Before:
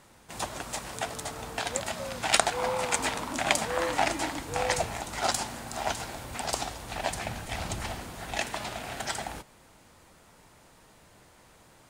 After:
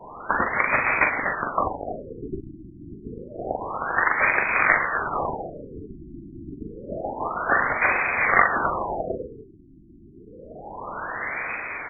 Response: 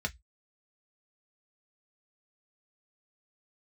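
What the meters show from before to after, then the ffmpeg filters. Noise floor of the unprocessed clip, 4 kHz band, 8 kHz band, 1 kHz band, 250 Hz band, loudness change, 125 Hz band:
-57 dBFS, under -40 dB, under -40 dB, +7.0 dB, +4.5 dB, +8.0 dB, +1.0 dB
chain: -filter_complex "[0:a]asplit=2[a][b];[b]adelay=41,volume=-5dB[c];[a][c]amix=inputs=2:normalize=0,asplit=2[d][e];[1:a]atrim=start_sample=2205,adelay=109[f];[e][f]afir=irnorm=-1:irlink=0,volume=-20.5dB[g];[d][g]amix=inputs=2:normalize=0,acompressor=threshold=-41dB:ratio=5,apsyclip=31.5dB,adynamicequalizer=threshold=0.0282:dfrequency=1000:dqfactor=0.73:tfrequency=1000:tqfactor=0.73:attack=5:release=100:ratio=0.375:range=2.5:mode=cutabove:tftype=bell,lowpass=f=3.2k:t=q:w=0.5098,lowpass=f=3.2k:t=q:w=0.6013,lowpass=f=3.2k:t=q:w=0.9,lowpass=f=3.2k:t=q:w=2.563,afreqshift=-3800,dynaudnorm=f=110:g=13:m=5.5dB,afftfilt=real='re*lt(b*sr/1024,350*pow(2600/350,0.5+0.5*sin(2*PI*0.28*pts/sr)))':imag='im*lt(b*sr/1024,350*pow(2600/350,0.5+0.5*sin(2*PI*0.28*pts/sr)))':win_size=1024:overlap=0.75,volume=2dB"

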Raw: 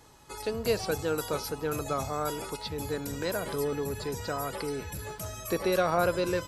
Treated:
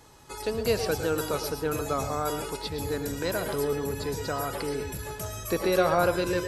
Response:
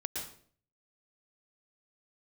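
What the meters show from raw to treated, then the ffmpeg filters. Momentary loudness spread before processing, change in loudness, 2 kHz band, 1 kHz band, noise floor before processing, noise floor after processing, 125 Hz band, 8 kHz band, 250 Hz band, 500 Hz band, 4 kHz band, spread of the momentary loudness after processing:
10 LU, +2.5 dB, +2.5 dB, +2.5 dB, -46 dBFS, -40 dBFS, +2.5 dB, +2.5 dB, +2.5 dB, +2.5 dB, +2.5 dB, 9 LU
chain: -filter_complex "[0:a]asplit=2[a][b];[1:a]atrim=start_sample=2205,atrim=end_sample=6174[c];[b][c]afir=irnorm=-1:irlink=0,volume=-0.5dB[d];[a][d]amix=inputs=2:normalize=0,volume=-3dB"

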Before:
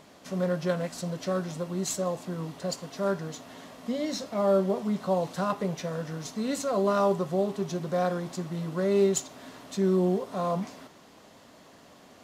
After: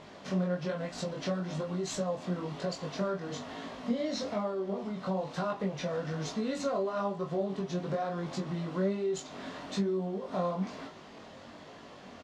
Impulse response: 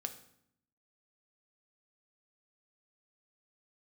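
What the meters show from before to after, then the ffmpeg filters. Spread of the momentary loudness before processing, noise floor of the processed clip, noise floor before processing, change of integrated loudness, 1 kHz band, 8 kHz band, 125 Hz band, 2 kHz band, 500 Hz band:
11 LU, -50 dBFS, -54 dBFS, -5.0 dB, -5.0 dB, -8.5 dB, -3.5 dB, -2.5 dB, -6.0 dB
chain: -filter_complex "[0:a]lowpass=4.7k,acompressor=threshold=-33dB:ratio=10,flanger=delay=18:depth=4.7:speed=1.1,asplit=2[a][b];[b]adelay=21,volume=-7.5dB[c];[a][c]amix=inputs=2:normalize=0,volume=6.5dB"

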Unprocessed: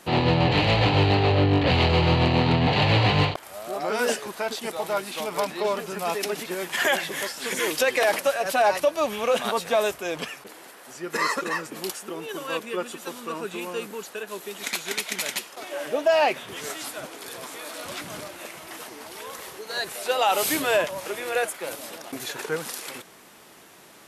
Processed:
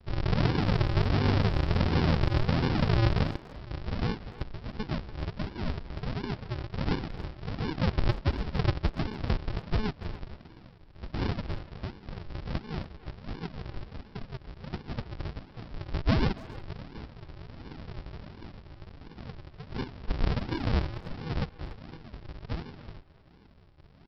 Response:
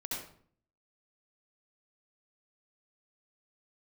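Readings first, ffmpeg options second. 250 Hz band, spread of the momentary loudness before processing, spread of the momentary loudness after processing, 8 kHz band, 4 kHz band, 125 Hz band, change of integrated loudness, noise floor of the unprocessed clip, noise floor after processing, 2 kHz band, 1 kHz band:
-3.5 dB, 16 LU, 19 LU, under -25 dB, -12.5 dB, -2.0 dB, -7.0 dB, -47 dBFS, -54 dBFS, -13.0 dB, -12.5 dB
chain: -filter_complex "[0:a]aresample=11025,acrusher=samples=33:mix=1:aa=0.000001:lfo=1:lforange=33:lforate=1.4,aresample=44100,asplit=2[a][b];[b]adelay=290,highpass=300,lowpass=3.4k,asoftclip=type=hard:threshold=-17.5dB,volume=-14dB[c];[a][c]amix=inputs=2:normalize=0,volume=-5dB"

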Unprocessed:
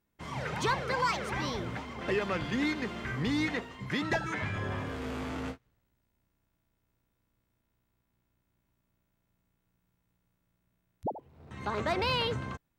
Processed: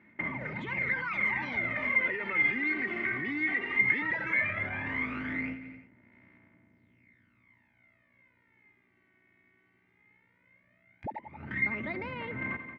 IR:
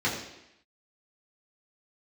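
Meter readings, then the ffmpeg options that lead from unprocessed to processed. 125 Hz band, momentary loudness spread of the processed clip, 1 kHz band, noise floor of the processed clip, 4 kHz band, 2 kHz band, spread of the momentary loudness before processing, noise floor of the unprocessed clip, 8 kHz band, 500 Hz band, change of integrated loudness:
-6.5 dB, 12 LU, -6.0 dB, -70 dBFS, -12.5 dB, +8.5 dB, 10 LU, -79 dBFS, under -20 dB, -7.0 dB, +3.0 dB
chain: -filter_complex "[0:a]asplit=2[a][b];[b]aeval=exprs='val(0)*gte(abs(val(0)),0.00708)':c=same,volume=-7dB[c];[a][c]amix=inputs=2:normalize=0,equalizer=f=220:w=1.4:g=7,aphaser=in_gain=1:out_gain=1:delay=2.7:decay=0.67:speed=0.16:type=sinusoidal,highpass=f=95:w=0.5412,highpass=f=95:w=1.3066,asplit=2[d][e];[e]aecho=0:1:88|176|264|352:0.0841|0.0429|0.0219|0.0112[f];[d][f]amix=inputs=2:normalize=0,acompressor=threshold=-34dB:ratio=6,alimiter=level_in=13dB:limit=-24dB:level=0:latency=1:release=37,volume=-13dB,lowpass=f=2.1k:t=q:w=11,aecho=1:1:3.3:0.33,volume=5dB"

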